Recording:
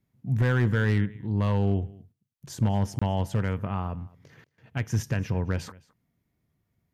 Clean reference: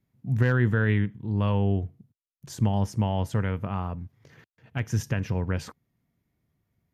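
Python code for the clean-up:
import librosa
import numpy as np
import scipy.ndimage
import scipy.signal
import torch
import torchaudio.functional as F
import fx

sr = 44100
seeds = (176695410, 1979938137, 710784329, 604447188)

y = fx.fix_declip(x, sr, threshold_db=-16.0)
y = fx.fix_interpolate(y, sr, at_s=(2.99,), length_ms=25.0)
y = fx.fix_echo_inverse(y, sr, delay_ms=214, level_db=-23.0)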